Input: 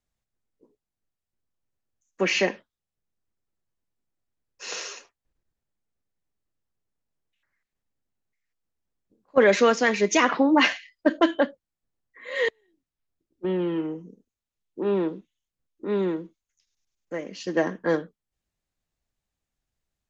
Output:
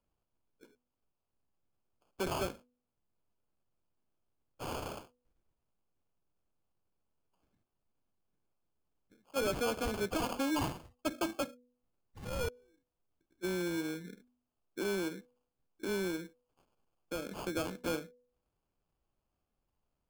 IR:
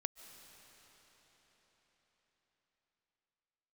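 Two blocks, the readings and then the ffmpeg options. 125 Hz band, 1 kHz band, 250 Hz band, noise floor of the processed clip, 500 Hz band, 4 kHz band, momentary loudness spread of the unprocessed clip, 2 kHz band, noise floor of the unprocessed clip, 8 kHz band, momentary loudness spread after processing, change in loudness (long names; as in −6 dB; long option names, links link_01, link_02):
−5.5 dB, −12.5 dB, −12.0 dB, below −85 dBFS, −13.0 dB, −11.5 dB, 16 LU, −15.5 dB, below −85 dBFS, can't be measured, 12 LU, −13.0 dB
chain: -af "acrusher=samples=23:mix=1:aa=0.000001,acompressor=threshold=-39dB:ratio=2,bandreject=frequency=246.2:width_type=h:width=4,bandreject=frequency=492.4:width_type=h:width=4,asoftclip=type=tanh:threshold=-25dB"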